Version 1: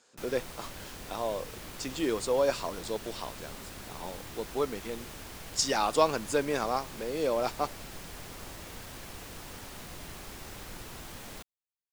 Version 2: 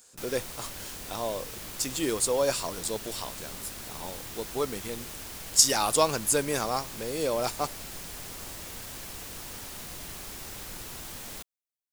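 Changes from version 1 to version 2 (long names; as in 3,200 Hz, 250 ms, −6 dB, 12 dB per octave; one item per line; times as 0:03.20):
speech: remove band-pass filter 170–6,100 Hz
master: add high-shelf EQ 4,100 Hz +8.5 dB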